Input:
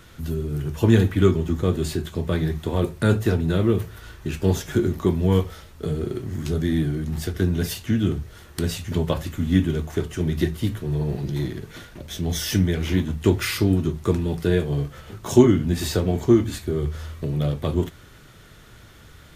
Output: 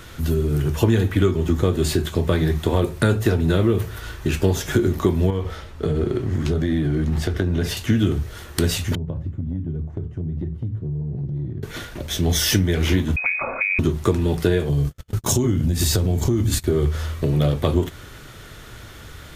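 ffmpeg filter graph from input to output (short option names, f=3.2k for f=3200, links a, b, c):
-filter_complex "[0:a]asettb=1/sr,asplit=3[a][b][c];[a]atrim=end=5.304[d];[b]atrim=start=5.3:end=7.77,asetpts=PTS-STARTPTS,afade=t=in:d=0.004:c=qsin,afade=t=out:st=2.466:d=0.004:c=qsin,aemphasis=mode=reproduction:type=50kf,acompressor=threshold=-23dB:ratio=4:attack=3.2:release=140:knee=1:detection=peak[e];[c]atrim=start=7.766[f];[d][e]acrossfade=d=0.004:c1=hsin:c2=qsin[g];[g][f]acrossfade=d=0.004:c1=qsin:c2=hsin,asettb=1/sr,asplit=3[h][i][j];[h]atrim=end=8.954[k];[i]atrim=start=8.95:end=11.63,asetpts=PTS-STARTPTS,afade=t=in:d=0.004:c=qsin,afade=t=out:st=2.676:d=0.004:c=qsin,bandpass=f=120:t=q:w=1.4,acompressor=threshold=-29dB:ratio=6:attack=3.2:release=140:knee=1:detection=peak[l];[j]atrim=start=11.626[m];[k][l]acrossfade=d=0.004:c1=hsin:c2=qsin[n];[n][m]acrossfade=d=0.004:c1=qsin:c2=hsin,asettb=1/sr,asplit=3[o][p][q];[o]atrim=end=13.164[r];[p]atrim=start=13.16:end=13.79,asetpts=PTS-STARTPTS,afade=t=in:d=0.004:c=qsin,afade=t=out:st=0.626:d=0.004:c=qsin,acompressor=threshold=-26dB:ratio=6:attack=3.2:release=140:knee=1:detection=peak,lowpass=f=2.2k:t=q:w=0.5098,lowpass=f=2.2k:t=q:w=0.6013,lowpass=f=2.2k:t=q:w=0.9,lowpass=f=2.2k:t=q:w=2.563,afreqshift=-2600[s];[q]atrim=start=13.786[t];[r][s]acrossfade=d=0.004:c1=hsin:c2=qsin[u];[u][t]acrossfade=d=0.004:c1=qsin:c2=hsin,asettb=1/sr,asplit=3[v][w][x];[v]atrim=end=14.694[y];[w]atrim=start=14.69:end=16.64,asetpts=PTS-STARTPTS,afade=t=in:d=0.004:c=qsin,afade=t=out:st=1.946:d=0.004:c=qsin,bass=f=250:g=10,treble=f=4k:g=9,acompressor=threshold=-22dB:ratio=6:attack=3.2:release=140:knee=1:detection=peak,agate=range=-47dB:threshold=-30dB:ratio=16:release=100:detection=peak[z];[x]atrim=start=16.636[aa];[y][z]acrossfade=d=0.004:c1=hsin:c2=qsin[ab];[ab][aa]acrossfade=d=0.004:c1=qsin:c2=hsin,equalizer=f=180:t=o:w=0.7:g=-4,acompressor=threshold=-22dB:ratio=6,volume=8dB"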